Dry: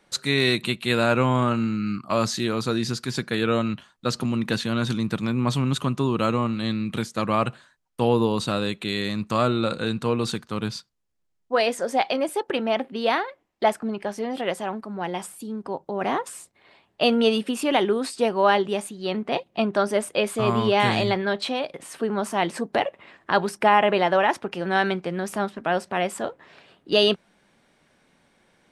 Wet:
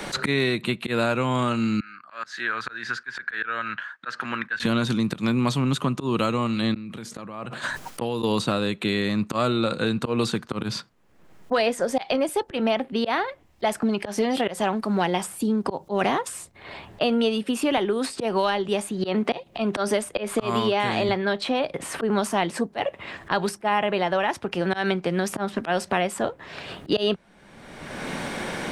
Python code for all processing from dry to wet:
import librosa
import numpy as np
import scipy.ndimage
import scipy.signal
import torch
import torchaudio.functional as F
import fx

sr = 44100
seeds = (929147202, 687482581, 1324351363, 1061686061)

y = fx.chain(x, sr, fx.bandpass_q(hz=1600.0, q=7.8),
    fx.auto_swell(attack_ms=358.0), at=(1.8, 4.6))
y = fx.chain(y, sr, fx.gate_flip(shuts_db=-27.0, range_db=-40),
    fx.sustainer(db_per_s=40.0), at=(6.74, 8.23))
y = fx.chain(y, sr, fx.peak_eq(hz=62.0, db=-6.0, octaves=2.9),
    fx.band_squash(depth_pct=70), at=(17.77, 21.09))
y = fx.rider(y, sr, range_db=10, speed_s=2.0)
y = fx.auto_swell(y, sr, attack_ms=171.0)
y = fx.band_squash(y, sr, depth_pct=100)